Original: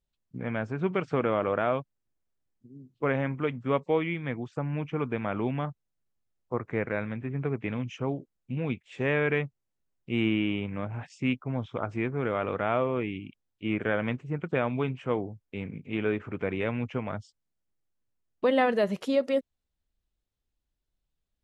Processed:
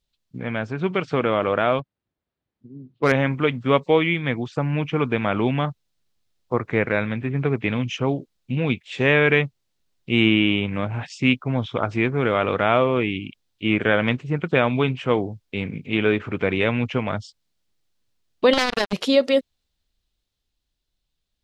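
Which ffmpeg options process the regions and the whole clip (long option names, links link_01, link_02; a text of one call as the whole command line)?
ffmpeg -i in.wav -filter_complex "[0:a]asettb=1/sr,asplit=3[link_01][link_02][link_03];[link_01]atrim=end=1.794[link_04];[link_02]atrim=start=1.79:end=3.12,asetpts=PTS-STARTPTS,afade=type=in:duration=0.004:curve=qsin,afade=type=out:start_time=1.326:duration=0.004:curve=qsin,highpass=53,adynamicsmooth=sensitivity=8:basefreq=2200[link_05];[link_03]atrim=start=3.116[link_06];[link_04][link_05]acrossfade=duration=0.004:curve1=hsin:curve2=qsin[link_07];[link_07][link_06]acrossfade=duration=0.004:curve1=qsin:curve2=hsin,asettb=1/sr,asplit=3[link_08][link_09][link_10];[link_08]atrim=end=18.534[link_11];[link_09]atrim=start=18.53:end=18.93,asetpts=PTS-STARTPTS,afade=type=in:duration=0.004:curve=qsin,afade=type=out:start_time=0.396:duration=0.004:curve=qsin,acompressor=threshold=-26dB:ratio=3:attack=3.2:release=140:knee=1:detection=peak,acrusher=bits=3:mix=0:aa=0.5[link_12];[link_10]atrim=start=18.926[link_13];[link_11][link_12]acrossfade=duration=0.004:curve1=hsin:curve2=qsin[link_14];[link_14][link_13]acrossfade=duration=0.004:curve1=qsin:curve2=hsin,equalizer=frequency=4000:width_type=o:width=1.3:gain=9.5,dynaudnorm=framelen=110:gausssize=31:maxgain=4dB,volume=4dB" out.wav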